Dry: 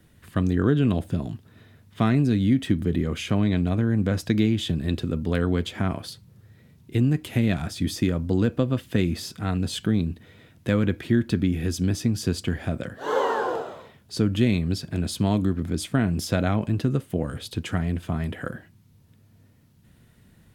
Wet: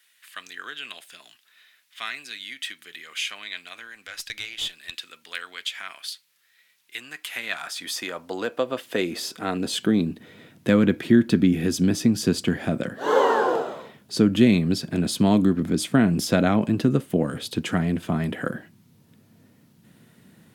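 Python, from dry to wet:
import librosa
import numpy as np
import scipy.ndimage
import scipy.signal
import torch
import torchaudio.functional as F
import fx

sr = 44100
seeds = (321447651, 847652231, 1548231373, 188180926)

y = fx.filter_sweep_highpass(x, sr, from_hz=2200.0, to_hz=190.0, start_s=6.61, end_s=10.39, q=1.1)
y = fx.tube_stage(y, sr, drive_db=24.0, bias=0.35, at=(3.87, 4.92))
y = y * 10.0 ** (4.0 / 20.0)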